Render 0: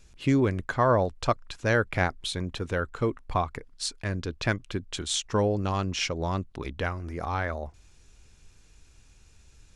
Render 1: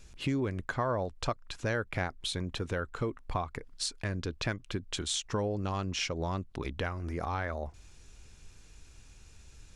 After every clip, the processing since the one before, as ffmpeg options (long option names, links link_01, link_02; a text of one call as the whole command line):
ffmpeg -i in.wav -af "acompressor=threshold=-35dB:ratio=2.5,volume=2dB" out.wav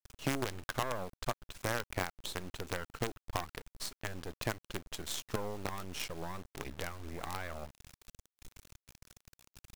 ffmpeg -i in.wav -af "acrusher=bits=5:dc=4:mix=0:aa=0.000001,volume=-3.5dB" out.wav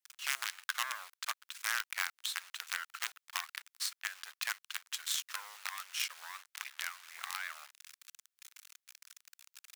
ffmpeg -i in.wav -af "highpass=frequency=1300:width=0.5412,highpass=frequency=1300:width=1.3066,volume=5dB" out.wav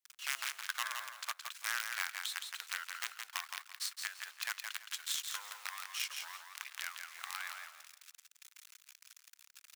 ffmpeg -i in.wav -af "aecho=1:1:168|336|504:0.531|0.127|0.0306,volume=-2.5dB" out.wav